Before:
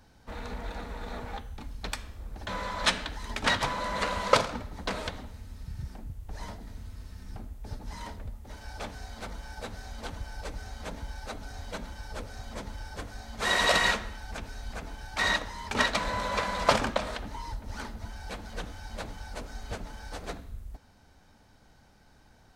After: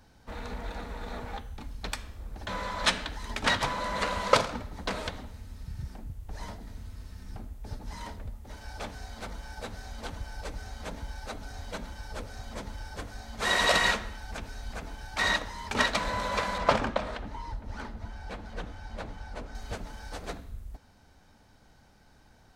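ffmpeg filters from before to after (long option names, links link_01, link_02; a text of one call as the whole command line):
ffmpeg -i in.wav -filter_complex "[0:a]asettb=1/sr,asplit=3[link_01][link_02][link_03];[link_01]atrim=end=16.584[link_04];[link_02]atrim=start=16.58:end=19.55,asetpts=PTS-STARTPTS,afade=type=in:duration=0.004:curve=qsin,afade=type=out:start_time=2.966:duration=0.004:curve=qsin,lowpass=frequency=2500:poles=1[link_05];[link_03]atrim=start=19.546[link_06];[link_04][link_05]acrossfade=duration=0.004:curve1=hsin:curve2=qsin[link_07];[link_07][link_06]acrossfade=duration=0.004:curve1=qsin:curve2=hsin" out.wav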